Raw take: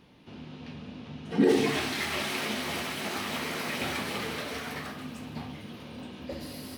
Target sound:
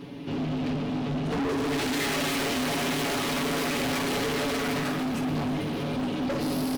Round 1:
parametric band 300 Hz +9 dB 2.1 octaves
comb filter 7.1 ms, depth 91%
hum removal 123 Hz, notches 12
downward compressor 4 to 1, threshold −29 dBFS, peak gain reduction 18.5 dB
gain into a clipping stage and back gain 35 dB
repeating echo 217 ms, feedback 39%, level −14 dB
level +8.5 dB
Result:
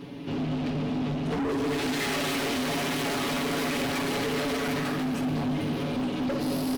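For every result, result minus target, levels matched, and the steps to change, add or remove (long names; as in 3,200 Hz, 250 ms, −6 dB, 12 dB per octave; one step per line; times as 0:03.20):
echo 97 ms early; downward compressor: peak gain reduction +4.5 dB
change: repeating echo 314 ms, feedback 39%, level −14 dB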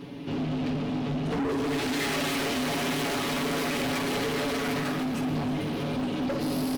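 downward compressor: peak gain reduction +4.5 dB
change: downward compressor 4 to 1, threshold −23 dBFS, peak gain reduction 14 dB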